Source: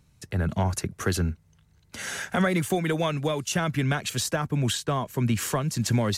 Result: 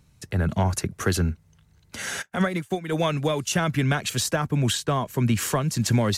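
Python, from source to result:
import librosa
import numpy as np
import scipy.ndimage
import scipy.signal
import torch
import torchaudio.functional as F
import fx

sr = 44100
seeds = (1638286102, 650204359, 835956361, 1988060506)

y = fx.upward_expand(x, sr, threshold_db=-43.0, expansion=2.5, at=(2.21, 2.91), fade=0.02)
y = F.gain(torch.from_numpy(y), 2.5).numpy()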